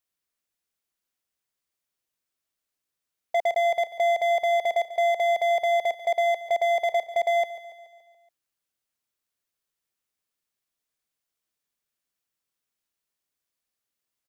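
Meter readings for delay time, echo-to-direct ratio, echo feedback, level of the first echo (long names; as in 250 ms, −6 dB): 142 ms, −13.5 dB, 57%, −15.0 dB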